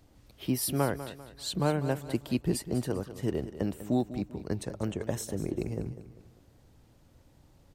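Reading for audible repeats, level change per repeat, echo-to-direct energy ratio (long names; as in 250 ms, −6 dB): 3, −8.5 dB, −12.5 dB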